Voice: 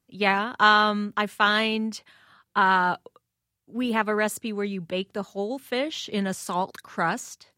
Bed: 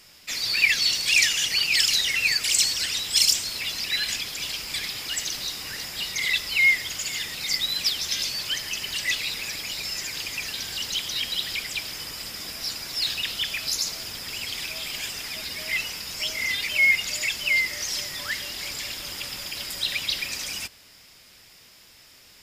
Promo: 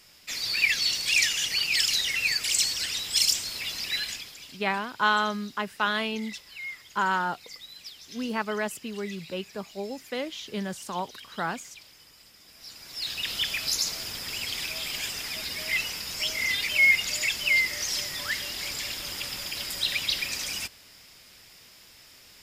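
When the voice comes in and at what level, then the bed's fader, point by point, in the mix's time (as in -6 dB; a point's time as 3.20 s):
4.40 s, -5.5 dB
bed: 3.97 s -3.5 dB
4.64 s -19 dB
12.44 s -19 dB
13.35 s -0.5 dB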